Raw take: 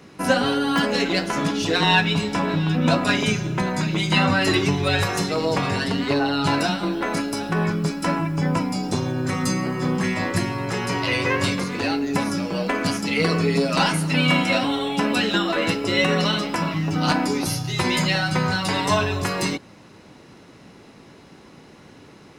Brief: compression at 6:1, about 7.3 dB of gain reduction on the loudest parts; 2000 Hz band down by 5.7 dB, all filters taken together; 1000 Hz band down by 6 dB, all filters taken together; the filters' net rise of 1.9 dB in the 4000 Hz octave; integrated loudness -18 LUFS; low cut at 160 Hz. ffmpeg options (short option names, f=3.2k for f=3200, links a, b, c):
-af "highpass=160,equalizer=f=1k:t=o:g=-6,equalizer=f=2k:t=o:g=-7.5,equalizer=f=4k:t=o:g=5,acompressor=threshold=-24dB:ratio=6,volume=9.5dB"